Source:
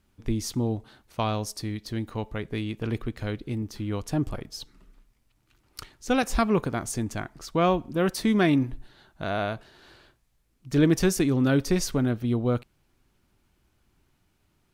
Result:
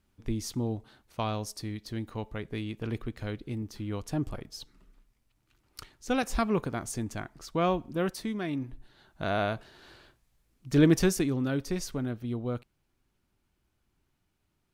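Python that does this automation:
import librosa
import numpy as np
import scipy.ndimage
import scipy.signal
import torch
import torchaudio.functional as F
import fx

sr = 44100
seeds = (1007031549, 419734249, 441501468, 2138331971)

y = fx.gain(x, sr, db=fx.line((8.0, -4.5), (8.41, -13.0), (9.26, -0.5), (10.94, -0.5), (11.49, -8.0)))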